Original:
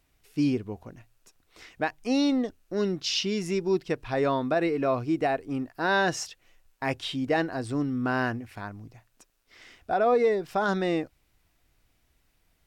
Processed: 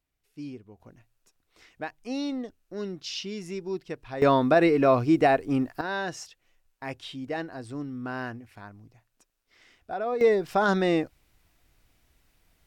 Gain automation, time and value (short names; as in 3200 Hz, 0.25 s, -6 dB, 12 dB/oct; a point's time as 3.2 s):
-14 dB
from 0.8 s -7 dB
from 4.22 s +5.5 dB
from 5.81 s -7 dB
from 10.21 s +3 dB